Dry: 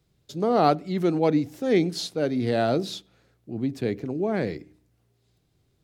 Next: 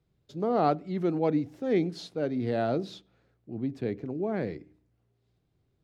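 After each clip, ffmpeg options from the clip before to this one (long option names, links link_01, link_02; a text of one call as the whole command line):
ffmpeg -i in.wav -af "lowpass=frequency=2100:poles=1,volume=-4.5dB" out.wav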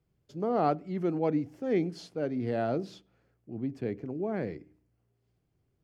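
ffmpeg -i in.wav -af "equalizer=frequency=3800:width=7.3:gain=-11,volume=-2dB" out.wav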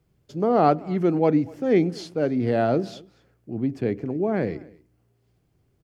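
ffmpeg -i in.wav -af "aecho=1:1:241:0.0668,volume=8.5dB" out.wav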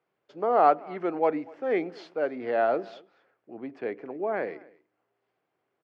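ffmpeg -i in.wav -af "highpass=640,lowpass=2100,volume=2dB" out.wav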